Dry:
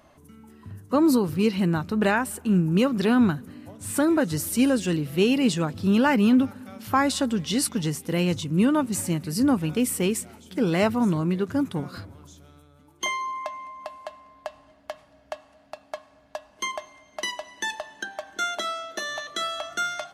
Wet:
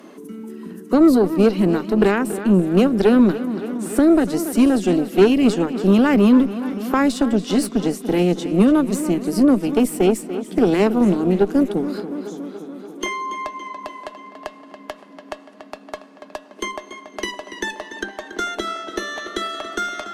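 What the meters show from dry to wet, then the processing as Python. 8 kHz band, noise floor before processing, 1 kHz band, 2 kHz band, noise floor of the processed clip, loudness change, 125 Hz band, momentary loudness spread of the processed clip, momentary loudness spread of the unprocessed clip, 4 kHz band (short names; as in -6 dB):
-1.5 dB, -57 dBFS, +3.0 dB, +2.0 dB, -44 dBFS, +6.0 dB, +2.0 dB, 21 LU, 20 LU, +0.5 dB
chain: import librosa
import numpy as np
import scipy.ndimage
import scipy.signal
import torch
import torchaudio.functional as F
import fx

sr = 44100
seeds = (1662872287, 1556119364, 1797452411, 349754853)

p1 = scipy.signal.sosfilt(scipy.signal.ellip(4, 1.0, 40, 190.0, 'highpass', fs=sr, output='sos'), x)
p2 = fx.low_shelf_res(p1, sr, hz=520.0, db=6.0, q=3.0)
p3 = fx.cheby_harmonics(p2, sr, harmonics=(6,), levels_db=(-19,), full_scale_db=-1.0)
p4 = p3 + fx.echo_tape(p3, sr, ms=285, feedback_pct=64, wet_db=-12, lp_hz=5300.0, drive_db=8.0, wow_cents=39, dry=0)
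y = fx.band_squash(p4, sr, depth_pct=40)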